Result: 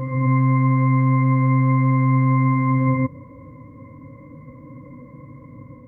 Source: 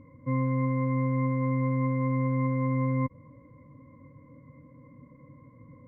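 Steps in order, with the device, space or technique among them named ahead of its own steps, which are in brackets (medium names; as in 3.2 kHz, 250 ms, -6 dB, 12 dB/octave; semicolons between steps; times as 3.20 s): reverse reverb (reverse; reverberation RT60 2.5 s, pre-delay 3 ms, DRR -4.5 dB; reverse); trim +5.5 dB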